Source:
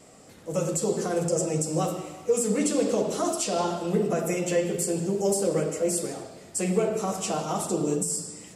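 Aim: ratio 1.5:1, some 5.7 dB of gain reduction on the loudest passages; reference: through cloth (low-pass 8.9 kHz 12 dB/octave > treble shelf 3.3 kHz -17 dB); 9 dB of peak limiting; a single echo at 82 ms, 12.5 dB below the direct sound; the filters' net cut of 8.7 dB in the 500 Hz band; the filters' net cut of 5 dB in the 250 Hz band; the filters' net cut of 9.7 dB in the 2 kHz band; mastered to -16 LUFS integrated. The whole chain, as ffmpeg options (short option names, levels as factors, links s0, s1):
-af "equalizer=f=250:t=o:g=-4.5,equalizer=f=500:t=o:g=-8.5,equalizer=f=2000:t=o:g=-6,acompressor=threshold=0.00891:ratio=1.5,alimiter=level_in=1.68:limit=0.0631:level=0:latency=1,volume=0.596,lowpass=8900,highshelf=f=3300:g=-17,aecho=1:1:82:0.237,volume=15.8"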